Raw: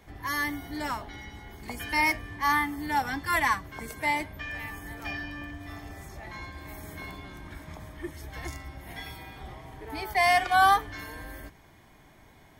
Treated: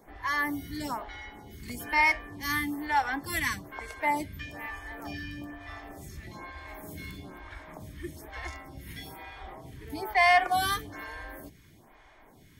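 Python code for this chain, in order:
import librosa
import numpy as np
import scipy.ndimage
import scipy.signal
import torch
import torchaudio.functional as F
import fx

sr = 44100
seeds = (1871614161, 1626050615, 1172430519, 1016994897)

y = fx.stagger_phaser(x, sr, hz=1.1)
y = y * librosa.db_to_amplitude(2.5)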